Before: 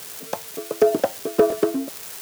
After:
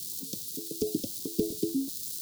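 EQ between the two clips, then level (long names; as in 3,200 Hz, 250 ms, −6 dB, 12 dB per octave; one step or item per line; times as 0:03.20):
elliptic band-stop filter 310–4,000 Hz, stop band 70 dB
dynamic equaliser 300 Hz, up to −4 dB, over −38 dBFS, Q 1.5
0.0 dB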